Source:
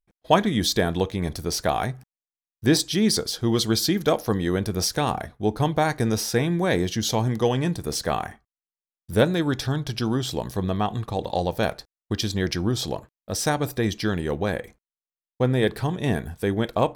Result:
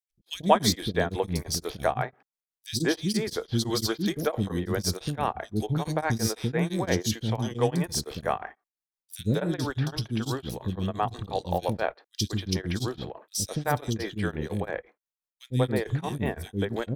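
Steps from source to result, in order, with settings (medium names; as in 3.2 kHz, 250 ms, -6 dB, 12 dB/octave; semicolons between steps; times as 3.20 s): three bands offset in time highs, lows, mids 100/190 ms, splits 330/3000 Hz; tremolo of two beating tones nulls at 5.9 Hz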